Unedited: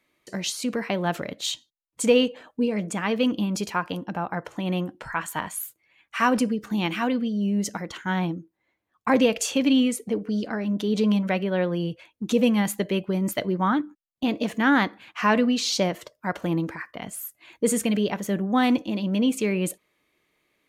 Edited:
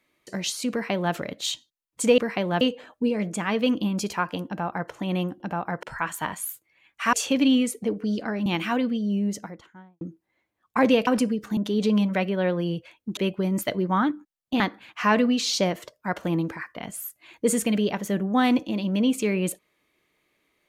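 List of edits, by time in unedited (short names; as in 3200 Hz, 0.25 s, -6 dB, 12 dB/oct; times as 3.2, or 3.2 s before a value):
0.71–1.14 copy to 2.18
4.04–4.47 copy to 4.97
6.27–6.77 swap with 9.38–10.71
7.32–8.32 studio fade out
12.31–12.87 cut
14.3–14.79 cut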